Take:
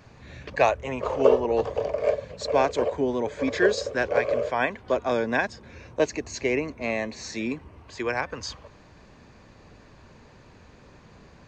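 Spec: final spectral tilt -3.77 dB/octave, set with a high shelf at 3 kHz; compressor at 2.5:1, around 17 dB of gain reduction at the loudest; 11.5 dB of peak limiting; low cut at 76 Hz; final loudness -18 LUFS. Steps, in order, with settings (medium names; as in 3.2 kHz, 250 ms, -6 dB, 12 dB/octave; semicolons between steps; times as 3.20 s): high-pass 76 Hz; treble shelf 3 kHz +4 dB; compression 2.5:1, threshold -39 dBFS; trim +25 dB; peak limiter -7 dBFS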